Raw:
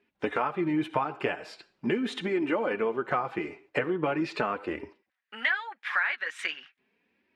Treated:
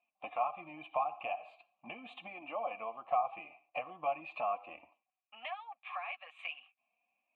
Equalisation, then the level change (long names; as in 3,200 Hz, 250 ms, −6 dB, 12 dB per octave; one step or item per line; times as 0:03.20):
formant filter a
phaser with its sweep stopped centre 1,500 Hz, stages 6
+5.0 dB